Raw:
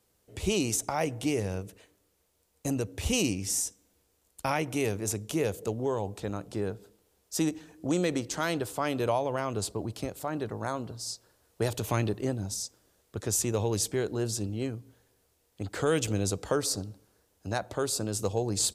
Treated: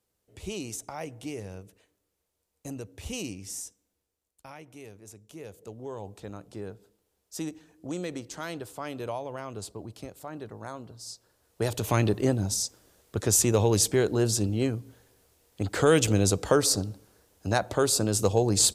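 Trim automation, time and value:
3.67 s -8 dB
4.46 s -17 dB
5.21 s -17 dB
6.06 s -6.5 dB
10.90 s -6.5 dB
12.18 s +6 dB

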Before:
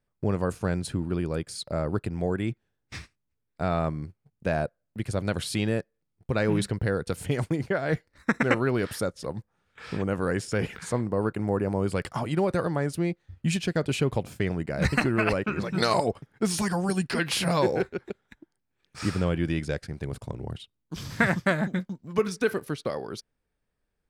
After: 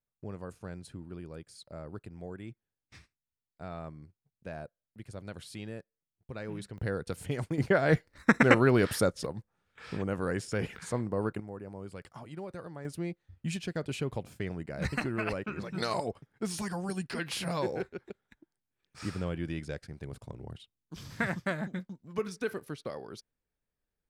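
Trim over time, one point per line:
-15 dB
from 6.78 s -6.5 dB
from 7.58 s +2 dB
from 9.26 s -5 dB
from 11.40 s -16.5 dB
from 12.85 s -8.5 dB

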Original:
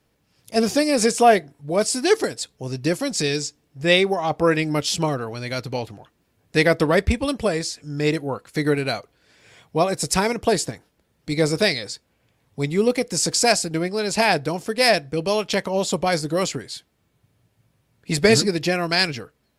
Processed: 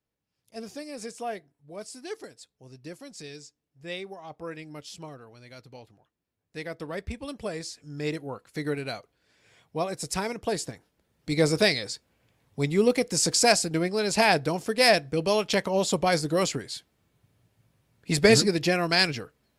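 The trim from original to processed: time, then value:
6.66 s -19.5 dB
7.71 s -9.5 dB
10.46 s -9.5 dB
11.38 s -2.5 dB

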